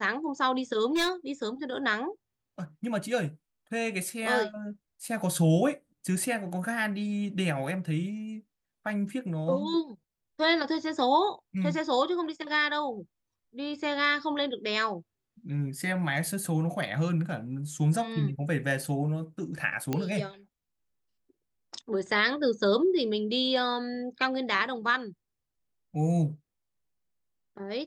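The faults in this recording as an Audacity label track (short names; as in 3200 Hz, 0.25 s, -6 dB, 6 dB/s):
0.940000	1.110000	clipped -23 dBFS
19.930000	19.930000	pop -15 dBFS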